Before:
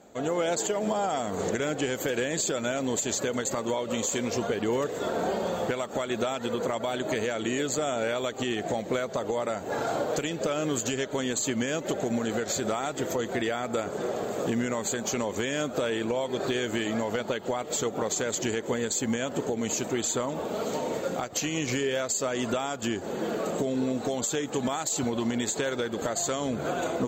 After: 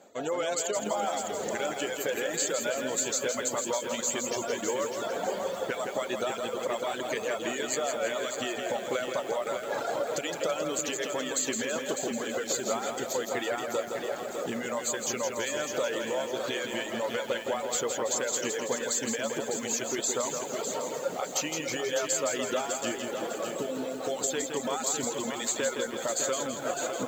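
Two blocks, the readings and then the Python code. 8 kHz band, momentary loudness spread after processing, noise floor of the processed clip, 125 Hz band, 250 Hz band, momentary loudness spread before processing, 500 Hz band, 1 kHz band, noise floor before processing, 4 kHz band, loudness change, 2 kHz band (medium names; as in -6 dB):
+1.0 dB, 4 LU, -38 dBFS, -11.0 dB, -7.0 dB, 3 LU, -1.5 dB, -1.5 dB, -38 dBFS, -0.5 dB, -1.5 dB, -0.5 dB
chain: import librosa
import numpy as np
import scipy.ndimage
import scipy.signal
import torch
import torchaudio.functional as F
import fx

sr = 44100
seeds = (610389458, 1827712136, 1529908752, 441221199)

p1 = fx.low_shelf(x, sr, hz=290.0, db=-10.0)
p2 = fx.dereverb_blind(p1, sr, rt60_s=1.1)
p3 = scipy.signal.sosfilt(scipy.signal.butter(2, 96.0, 'highpass', fs=sr, output='sos'), p2)
p4 = fx.dereverb_blind(p3, sr, rt60_s=1.5)
p5 = fx.peak_eq(p4, sr, hz=550.0, db=5.0, octaves=0.21)
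p6 = p5 + fx.echo_feedback(p5, sr, ms=165, feedback_pct=51, wet_db=-6, dry=0)
y = fx.echo_crushed(p6, sr, ms=603, feedback_pct=35, bits=8, wet_db=-6.5)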